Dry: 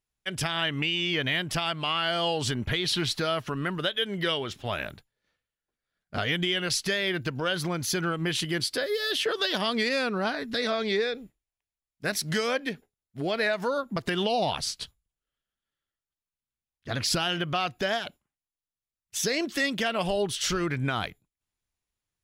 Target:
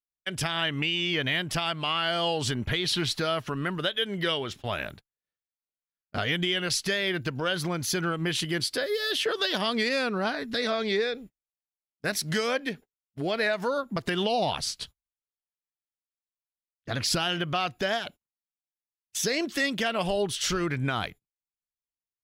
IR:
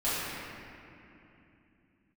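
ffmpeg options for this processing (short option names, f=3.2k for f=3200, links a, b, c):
-af "agate=range=-20dB:threshold=-44dB:ratio=16:detection=peak"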